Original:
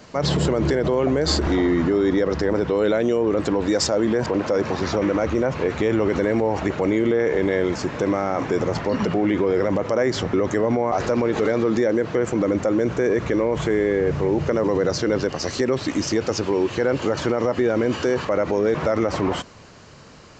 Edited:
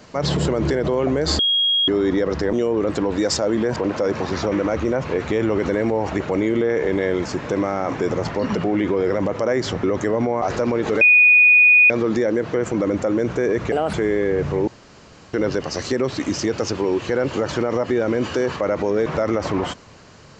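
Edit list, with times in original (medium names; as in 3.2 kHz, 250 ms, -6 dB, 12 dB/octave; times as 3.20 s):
1.39–1.88 s: bleep 3.28 kHz -15 dBFS
2.53–3.03 s: delete
11.51 s: add tone 2.47 kHz -8.5 dBFS 0.89 s
13.33–13.62 s: speed 135%
14.36–15.02 s: room tone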